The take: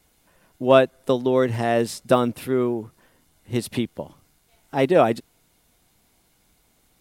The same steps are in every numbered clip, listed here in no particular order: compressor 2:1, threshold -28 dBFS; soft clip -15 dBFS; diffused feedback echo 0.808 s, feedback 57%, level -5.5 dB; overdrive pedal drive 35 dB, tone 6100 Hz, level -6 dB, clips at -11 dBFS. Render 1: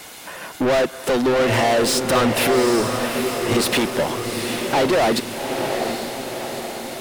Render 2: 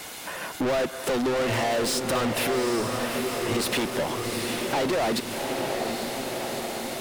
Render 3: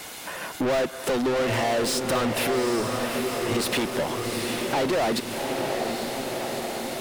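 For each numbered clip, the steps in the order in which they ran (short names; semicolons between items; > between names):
soft clip > compressor > overdrive pedal > diffused feedback echo; overdrive pedal > soft clip > diffused feedback echo > compressor; soft clip > overdrive pedal > diffused feedback echo > compressor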